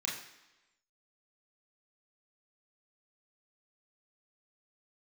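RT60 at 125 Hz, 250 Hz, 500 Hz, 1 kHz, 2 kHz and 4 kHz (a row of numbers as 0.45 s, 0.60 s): 0.85 s, 0.95 s, 1.0 s, 1.0 s, 1.1 s, 1.0 s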